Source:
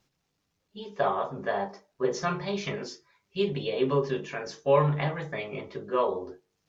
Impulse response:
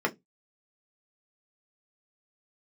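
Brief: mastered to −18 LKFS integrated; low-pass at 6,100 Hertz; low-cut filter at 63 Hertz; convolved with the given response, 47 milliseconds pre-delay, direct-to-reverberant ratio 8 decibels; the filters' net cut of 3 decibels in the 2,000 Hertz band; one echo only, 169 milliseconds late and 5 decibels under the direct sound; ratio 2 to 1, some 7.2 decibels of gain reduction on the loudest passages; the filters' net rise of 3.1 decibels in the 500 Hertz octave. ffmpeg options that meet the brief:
-filter_complex "[0:a]highpass=63,lowpass=6100,equalizer=frequency=500:width_type=o:gain=4,equalizer=frequency=2000:width_type=o:gain=-4,acompressor=threshold=-27dB:ratio=2,aecho=1:1:169:0.562,asplit=2[link_01][link_02];[1:a]atrim=start_sample=2205,adelay=47[link_03];[link_02][link_03]afir=irnorm=-1:irlink=0,volume=-18.5dB[link_04];[link_01][link_04]amix=inputs=2:normalize=0,volume=11.5dB"

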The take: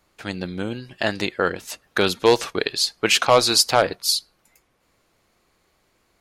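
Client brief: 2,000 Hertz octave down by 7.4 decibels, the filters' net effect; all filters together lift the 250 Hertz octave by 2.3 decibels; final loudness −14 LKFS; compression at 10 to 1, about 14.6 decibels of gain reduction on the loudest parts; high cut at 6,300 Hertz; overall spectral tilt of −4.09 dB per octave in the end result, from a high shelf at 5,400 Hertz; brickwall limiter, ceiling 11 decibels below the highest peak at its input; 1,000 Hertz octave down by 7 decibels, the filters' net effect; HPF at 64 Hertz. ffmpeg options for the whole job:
ffmpeg -i in.wav -af "highpass=64,lowpass=6300,equalizer=frequency=250:width_type=o:gain=4,equalizer=frequency=1000:width_type=o:gain=-8,equalizer=frequency=2000:width_type=o:gain=-6.5,highshelf=frequency=5400:gain=-6.5,acompressor=threshold=-26dB:ratio=10,volume=22dB,alimiter=limit=-2dB:level=0:latency=1" out.wav

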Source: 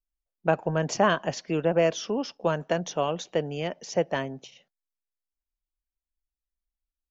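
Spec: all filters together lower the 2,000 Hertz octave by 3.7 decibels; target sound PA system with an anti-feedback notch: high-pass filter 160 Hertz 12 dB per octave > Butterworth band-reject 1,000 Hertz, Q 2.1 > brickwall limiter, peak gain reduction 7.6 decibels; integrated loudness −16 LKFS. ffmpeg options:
ffmpeg -i in.wav -af "highpass=160,asuperstop=centerf=1000:order=8:qfactor=2.1,equalizer=frequency=2000:width_type=o:gain=-5,volume=15dB,alimiter=limit=-3.5dB:level=0:latency=1" out.wav

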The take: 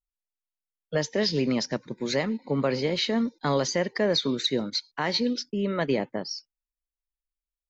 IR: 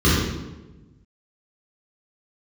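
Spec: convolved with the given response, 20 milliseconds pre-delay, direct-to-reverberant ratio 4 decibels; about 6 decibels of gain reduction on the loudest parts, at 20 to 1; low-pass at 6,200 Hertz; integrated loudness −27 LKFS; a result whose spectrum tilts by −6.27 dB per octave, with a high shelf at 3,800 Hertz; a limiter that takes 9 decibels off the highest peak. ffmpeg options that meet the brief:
-filter_complex "[0:a]lowpass=6200,highshelf=frequency=3800:gain=-6.5,acompressor=threshold=-26dB:ratio=20,alimiter=level_in=0.5dB:limit=-24dB:level=0:latency=1,volume=-0.5dB,asplit=2[link_01][link_02];[1:a]atrim=start_sample=2205,adelay=20[link_03];[link_02][link_03]afir=irnorm=-1:irlink=0,volume=-25dB[link_04];[link_01][link_04]amix=inputs=2:normalize=0,volume=1.5dB"

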